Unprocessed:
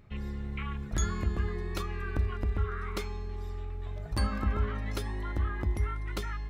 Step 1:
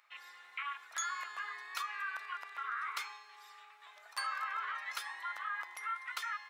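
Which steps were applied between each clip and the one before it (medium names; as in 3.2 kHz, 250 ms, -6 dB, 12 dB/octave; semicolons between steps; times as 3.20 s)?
high-pass 1 kHz 24 dB/octave; dynamic bell 1.4 kHz, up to +4 dB, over -50 dBFS, Q 0.83; in parallel at -1 dB: peak limiter -32.5 dBFS, peak gain reduction 10 dB; on the sum: trim -4.5 dB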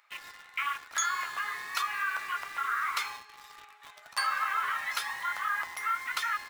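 in parallel at -3 dB: word length cut 8-bit, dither none; on the sum: flange 1.1 Hz, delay 2.1 ms, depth 9.7 ms, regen -58%; trim +7.5 dB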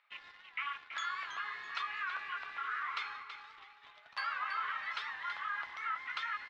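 four-pole ladder low-pass 4.3 kHz, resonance 30%; feedback delay 328 ms, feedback 31%, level -9.5 dB; warped record 78 rpm, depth 100 cents; trim -1.5 dB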